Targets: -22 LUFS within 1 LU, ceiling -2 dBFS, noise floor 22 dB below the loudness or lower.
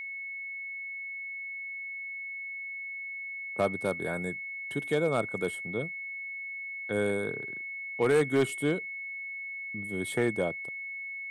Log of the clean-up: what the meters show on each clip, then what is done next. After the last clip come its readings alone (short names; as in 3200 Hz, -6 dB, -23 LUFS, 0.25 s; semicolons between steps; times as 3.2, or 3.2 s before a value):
clipped 0.3%; flat tops at -18.5 dBFS; steady tone 2200 Hz; tone level -36 dBFS; loudness -32.5 LUFS; peak -18.5 dBFS; loudness target -22.0 LUFS
-> clip repair -18.5 dBFS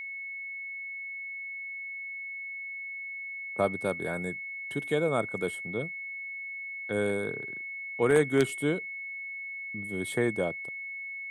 clipped 0.0%; steady tone 2200 Hz; tone level -36 dBFS
-> notch 2200 Hz, Q 30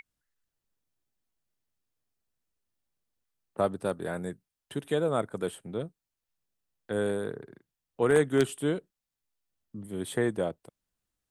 steady tone none; loudness -30.5 LUFS; peak -9.5 dBFS; loudness target -22.0 LUFS
-> gain +8.5 dB; limiter -2 dBFS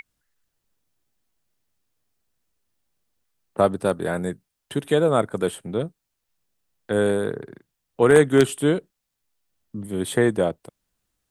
loudness -22.0 LUFS; peak -2.0 dBFS; noise floor -80 dBFS